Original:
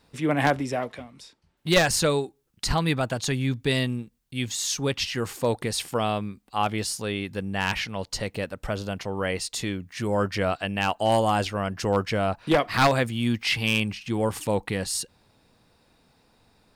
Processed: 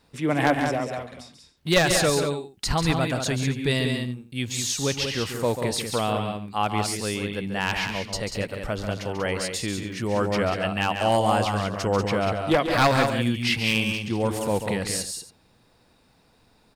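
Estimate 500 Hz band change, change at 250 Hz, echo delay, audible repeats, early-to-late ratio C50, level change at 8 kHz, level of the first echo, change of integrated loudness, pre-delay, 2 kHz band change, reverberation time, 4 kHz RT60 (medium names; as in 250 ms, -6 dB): +1.5 dB, +1.5 dB, 140 ms, 3, no reverb, +1.5 dB, -8.5 dB, +1.5 dB, no reverb, +1.5 dB, no reverb, no reverb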